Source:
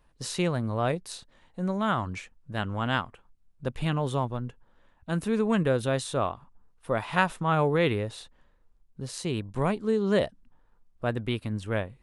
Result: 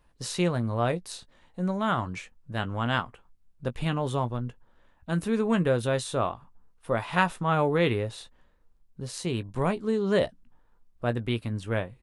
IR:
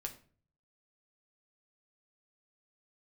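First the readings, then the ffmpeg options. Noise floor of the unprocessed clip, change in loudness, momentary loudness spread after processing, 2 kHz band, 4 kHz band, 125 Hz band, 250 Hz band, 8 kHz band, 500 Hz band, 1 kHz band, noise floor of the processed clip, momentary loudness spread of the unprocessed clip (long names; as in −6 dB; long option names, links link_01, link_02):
−64 dBFS, +0.5 dB, 14 LU, 0.0 dB, +0.5 dB, +0.5 dB, 0.0 dB, +0.5 dB, +0.5 dB, +0.5 dB, −63 dBFS, 15 LU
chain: -filter_complex "[0:a]asplit=2[link_01][link_02];[link_02]adelay=17,volume=-11.5dB[link_03];[link_01][link_03]amix=inputs=2:normalize=0"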